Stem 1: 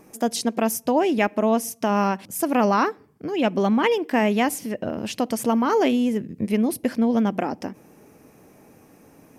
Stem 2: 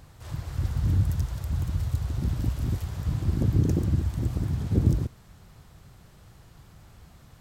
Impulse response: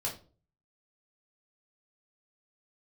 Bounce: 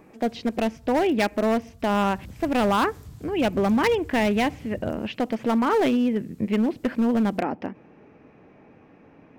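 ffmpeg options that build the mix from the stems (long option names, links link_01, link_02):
-filter_complex "[0:a]lowpass=frequency=2800:width=0.5412,lowpass=frequency=2800:width=1.3066,asoftclip=type=hard:threshold=-16dB,volume=-0.5dB[link_01];[1:a]acompressor=threshold=-33dB:ratio=2,volume=-10dB,afade=type=in:start_time=1.84:duration=0.38:silence=0.375837[link_02];[link_01][link_02]amix=inputs=2:normalize=0,highshelf=frequency=4900:gain=12"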